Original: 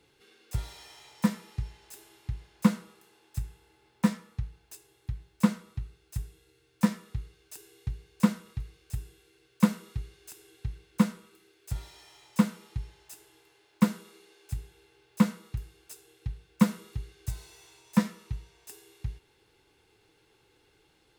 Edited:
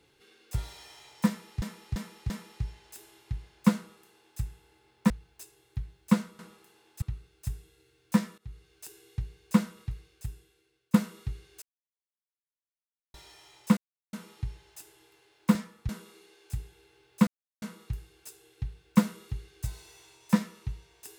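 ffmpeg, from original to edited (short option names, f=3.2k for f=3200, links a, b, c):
-filter_complex "[0:a]asplit=15[a][b][c][d][e][f][g][h][i][j][k][l][m][n][o];[a]atrim=end=1.622[p];[b]atrim=start=1.278:end=1.622[q];[c]atrim=start=1.278:end=1.622[r];[d]atrim=start=1.278:end=4.082[s];[e]atrim=start=4.418:end=5.712[t];[f]atrim=start=2.758:end=3.392[u];[g]atrim=start=5.708:end=7.07,asetpts=PTS-STARTPTS,afade=t=out:st=1.358:d=0.004:c=hsin:silence=0.0841395[v];[h]atrim=start=7.07:end=9.63,asetpts=PTS-STARTPTS,afade=t=in:d=0.47:c=qsin:silence=0.0841395,afade=t=out:st=1.53:d=1.03:silence=0.149624[w];[i]atrim=start=9.63:end=10.31,asetpts=PTS-STARTPTS,afade=t=in:d=0.004:c=hsin:silence=0.149624,afade=t=out:st=0.676:d=0.004:c=hsin[x];[j]atrim=start=10.31:end=11.83,asetpts=PTS-STARTPTS,volume=0[y];[k]atrim=start=11.83:end=12.46,asetpts=PTS-STARTPTS,afade=t=in:d=0.004:c=hsin,afade=t=out:st=0.626:d=0.004:c=hsin,apad=pad_dur=0.36[z];[l]atrim=start=12.46:end=13.882,asetpts=PTS-STARTPTS,afade=t=in:d=0.004:c=hsin[aa];[m]atrim=start=4.078:end=4.422[ab];[n]atrim=start=13.878:end=15.26,asetpts=PTS-STARTPTS,afade=t=out:st=1.378:d=0.004:c=hsin,apad=pad_dur=0.35[ac];[o]atrim=start=15.26,asetpts=PTS-STARTPTS,afade=t=in:d=0.004:c=hsin[ad];[p][q]acrossfade=d=0.004:c1=hsin:c2=hsin[ae];[ae][r]acrossfade=d=0.004:c1=hsin:c2=hsin[af];[af][s]acrossfade=d=0.004:c1=hsin:c2=hsin[ag];[ag][t]acrossfade=d=0.004:c1=hsin:c2=hsin[ah];[ah][u]acrossfade=d=0.004:c1=hsin:c2=hsin[ai];[v][w][x][y][z][aa]concat=n=6:v=0:a=1[aj];[ai][aj]acrossfade=d=0.004:c1=hsin:c2=hsin[ak];[ak][ab]acrossfade=d=0.004:c1=hsin:c2=hsin[al];[ac][ad]concat=n=2:v=0:a=1[am];[al][am]acrossfade=d=0.004:c1=hsin:c2=hsin"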